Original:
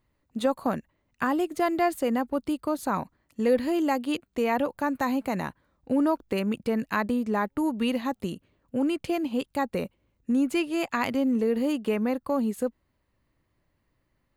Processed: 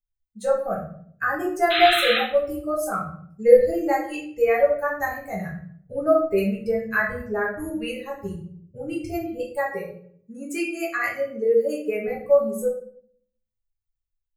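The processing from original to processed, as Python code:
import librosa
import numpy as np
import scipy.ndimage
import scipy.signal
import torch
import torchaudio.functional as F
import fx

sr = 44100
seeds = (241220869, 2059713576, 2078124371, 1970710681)

y = fx.bin_expand(x, sr, power=2.0)
y = fx.highpass(y, sr, hz=230.0, slope=12, at=(9.55, 12.08))
y = fx.fixed_phaser(y, sr, hz=960.0, stages=6)
y = fx.spec_paint(y, sr, seeds[0], shape='noise', start_s=1.7, length_s=0.49, low_hz=1200.0, high_hz=4100.0, level_db=-34.0)
y = fx.room_shoebox(y, sr, seeds[1], volume_m3=81.0, walls='mixed', distance_m=1.4)
y = F.gain(torch.from_numpy(y), 6.0).numpy()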